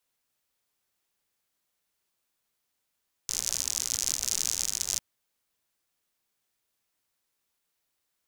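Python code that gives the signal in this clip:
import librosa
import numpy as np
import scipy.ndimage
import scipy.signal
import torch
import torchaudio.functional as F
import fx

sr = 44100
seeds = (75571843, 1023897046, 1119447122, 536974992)

y = fx.rain(sr, seeds[0], length_s=1.7, drops_per_s=80.0, hz=6300.0, bed_db=-17.5)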